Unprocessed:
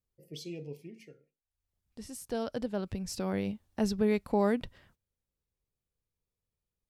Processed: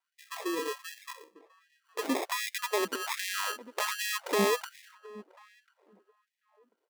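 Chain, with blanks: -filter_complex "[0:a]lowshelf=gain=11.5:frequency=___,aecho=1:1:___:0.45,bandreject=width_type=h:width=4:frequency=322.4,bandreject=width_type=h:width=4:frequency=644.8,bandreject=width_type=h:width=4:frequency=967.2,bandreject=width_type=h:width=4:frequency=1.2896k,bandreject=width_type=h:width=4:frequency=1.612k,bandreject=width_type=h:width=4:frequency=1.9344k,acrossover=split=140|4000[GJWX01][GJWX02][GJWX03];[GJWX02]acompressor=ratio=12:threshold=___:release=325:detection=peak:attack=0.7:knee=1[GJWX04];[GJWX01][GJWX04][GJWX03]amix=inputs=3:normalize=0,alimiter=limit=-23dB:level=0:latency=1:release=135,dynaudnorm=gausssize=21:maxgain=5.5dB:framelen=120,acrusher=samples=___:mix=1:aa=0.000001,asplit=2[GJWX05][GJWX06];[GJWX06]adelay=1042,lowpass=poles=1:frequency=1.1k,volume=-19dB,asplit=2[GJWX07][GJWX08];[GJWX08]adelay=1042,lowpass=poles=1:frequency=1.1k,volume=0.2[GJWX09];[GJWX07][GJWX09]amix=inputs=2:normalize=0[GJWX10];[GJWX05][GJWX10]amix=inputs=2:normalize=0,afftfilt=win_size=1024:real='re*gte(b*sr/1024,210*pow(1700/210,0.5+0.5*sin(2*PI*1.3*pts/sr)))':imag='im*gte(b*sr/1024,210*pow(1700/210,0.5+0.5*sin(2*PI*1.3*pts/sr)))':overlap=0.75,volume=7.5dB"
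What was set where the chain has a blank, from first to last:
360, 2.2, -34dB, 30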